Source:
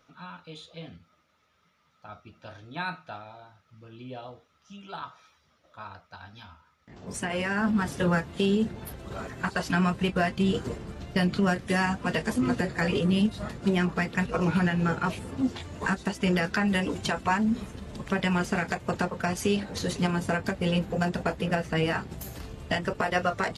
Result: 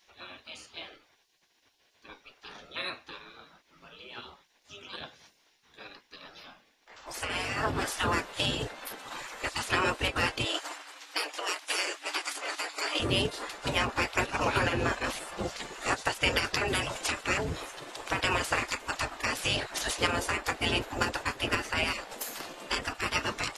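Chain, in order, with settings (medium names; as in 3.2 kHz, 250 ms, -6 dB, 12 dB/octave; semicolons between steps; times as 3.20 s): 10.44–13.00 s: brick-wall FIR high-pass 310 Hz; spectral gate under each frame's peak -15 dB weak; trim +7.5 dB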